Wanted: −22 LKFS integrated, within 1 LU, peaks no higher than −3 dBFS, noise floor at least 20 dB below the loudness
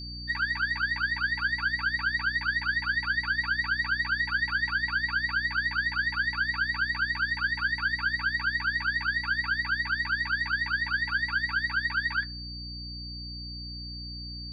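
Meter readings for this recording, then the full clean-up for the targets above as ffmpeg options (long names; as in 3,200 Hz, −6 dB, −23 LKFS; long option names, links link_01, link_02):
mains hum 60 Hz; hum harmonics up to 300 Hz; level of the hum −39 dBFS; interfering tone 4,600 Hz; level of the tone −39 dBFS; integrated loudness −27.5 LKFS; sample peak −17.0 dBFS; target loudness −22.0 LKFS
→ -af "bandreject=frequency=60:width_type=h:width=4,bandreject=frequency=120:width_type=h:width=4,bandreject=frequency=180:width_type=h:width=4,bandreject=frequency=240:width_type=h:width=4,bandreject=frequency=300:width_type=h:width=4"
-af "bandreject=frequency=4600:width=30"
-af "volume=5.5dB"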